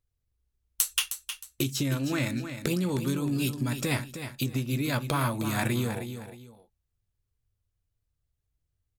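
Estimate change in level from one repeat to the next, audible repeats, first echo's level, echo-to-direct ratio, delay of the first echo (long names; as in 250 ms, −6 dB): −10.5 dB, 2, −9.5 dB, −9.0 dB, 312 ms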